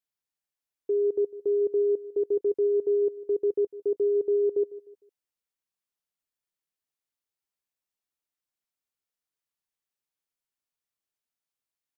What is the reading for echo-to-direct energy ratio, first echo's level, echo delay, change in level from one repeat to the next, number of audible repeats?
-17.5 dB, -18.0 dB, 0.152 s, -8.0 dB, 3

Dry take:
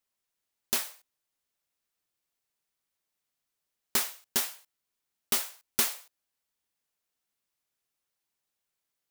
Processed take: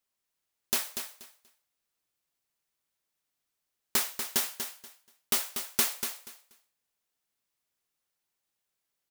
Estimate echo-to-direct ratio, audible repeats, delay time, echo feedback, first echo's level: -8.0 dB, 2, 0.24 s, 20%, -8.0 dB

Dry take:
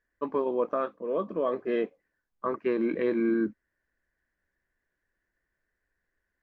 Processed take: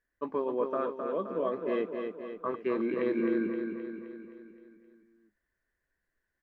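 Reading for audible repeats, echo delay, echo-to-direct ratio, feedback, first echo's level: 6, 0.261 s, -4.0 dB, 55%, -5.5 dB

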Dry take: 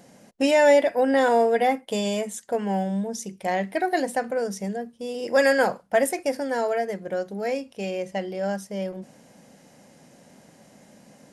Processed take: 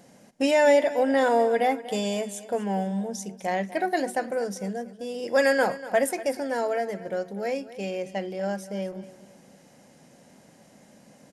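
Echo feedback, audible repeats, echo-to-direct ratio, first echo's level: 34%, 3, -15.5 dB, -16.0 dB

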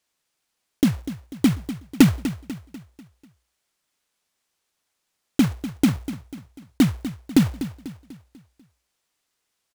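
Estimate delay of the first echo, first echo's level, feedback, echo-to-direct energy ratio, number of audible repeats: 0.246 s, -13.0 dB, 46%, -12.0 dB, 4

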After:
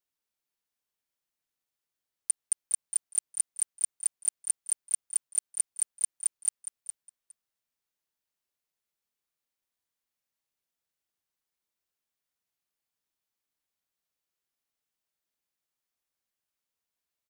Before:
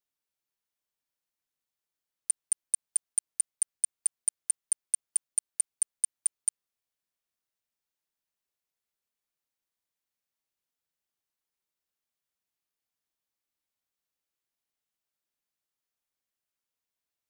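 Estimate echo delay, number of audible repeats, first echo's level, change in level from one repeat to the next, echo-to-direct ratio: 0.412 s, 2, -11.0 dB, -16.5 dB, -11.0 dB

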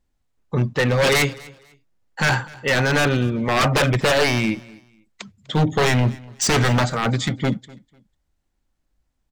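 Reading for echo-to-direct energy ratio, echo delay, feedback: -22.5 dB, 0.248 s, 24%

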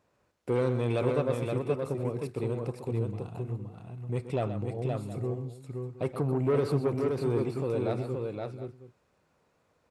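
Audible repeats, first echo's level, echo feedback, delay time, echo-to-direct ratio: 3, -10.5 dB, no steady repeat, 0.126 s, -3.0 dB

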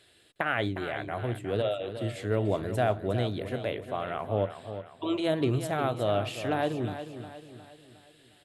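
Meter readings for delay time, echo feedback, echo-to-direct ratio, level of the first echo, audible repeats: 0.359 s, 45%, -9.5 dB, -10.5 dB, 4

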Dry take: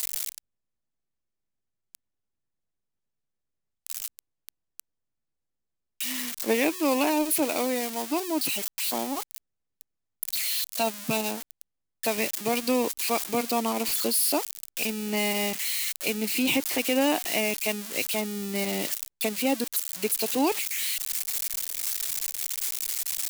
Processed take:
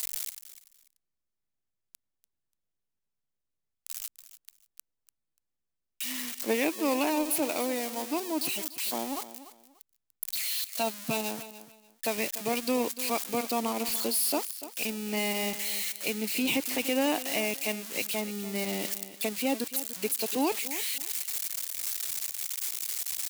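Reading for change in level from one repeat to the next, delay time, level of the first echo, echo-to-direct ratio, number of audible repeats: -13.0 dB, 0.292 s, -14.5 dB, -14.5 dB, 2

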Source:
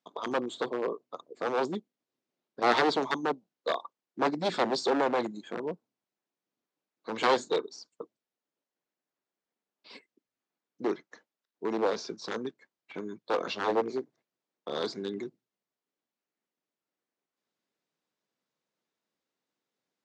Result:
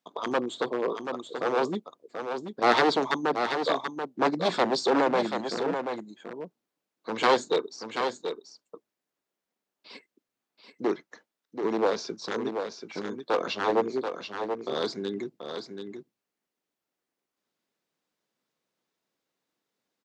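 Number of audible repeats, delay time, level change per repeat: 1, 0.733 s, no steady repeat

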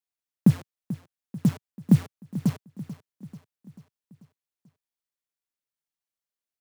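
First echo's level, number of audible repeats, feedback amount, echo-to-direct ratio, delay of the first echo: -15.0 dB, 4, 54%, -13.5 dB, 0.439 s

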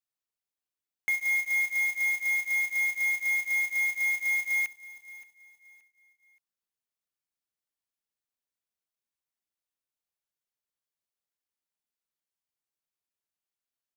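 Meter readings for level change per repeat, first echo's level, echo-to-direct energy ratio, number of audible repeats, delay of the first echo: -10.0 dB, -18.0 dB, -17.5 dB, 2, 0.574 s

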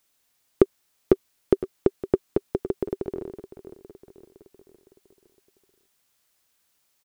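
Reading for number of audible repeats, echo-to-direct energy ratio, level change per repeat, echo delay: 4, -13.5 dB, -5.5 dB, 0.511 s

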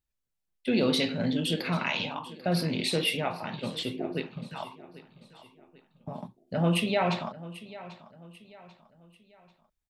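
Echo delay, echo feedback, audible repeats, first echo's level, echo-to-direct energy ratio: 0.791 s, 40%, 3, -17.0 dB, -16.5 dB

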